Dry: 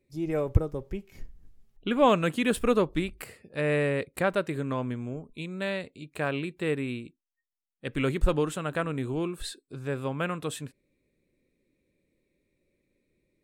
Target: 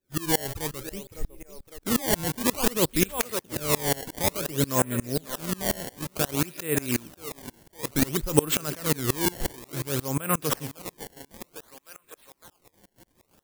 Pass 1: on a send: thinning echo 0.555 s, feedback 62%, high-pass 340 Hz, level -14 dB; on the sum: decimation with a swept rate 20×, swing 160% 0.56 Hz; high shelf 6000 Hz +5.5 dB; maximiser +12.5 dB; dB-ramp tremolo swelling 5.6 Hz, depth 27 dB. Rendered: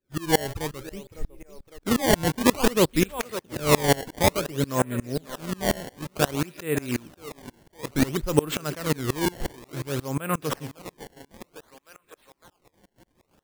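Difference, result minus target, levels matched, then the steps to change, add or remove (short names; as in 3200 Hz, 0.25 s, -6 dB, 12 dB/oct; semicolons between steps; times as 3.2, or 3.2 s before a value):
8000 Hz band -4.0 dB
change: high shelf 6000 Hz +16 dB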